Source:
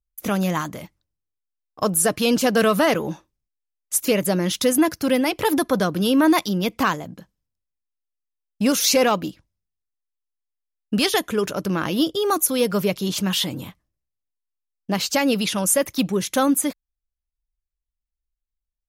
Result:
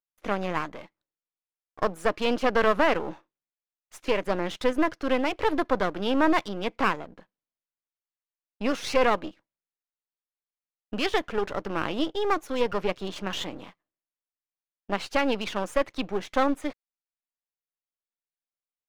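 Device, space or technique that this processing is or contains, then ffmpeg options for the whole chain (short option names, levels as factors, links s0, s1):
crystal radio: -af "highpass=330,lowpass=2500,aeval=exprs='if(lt(val(0),0),0.251*val(0),val(0))':c=same"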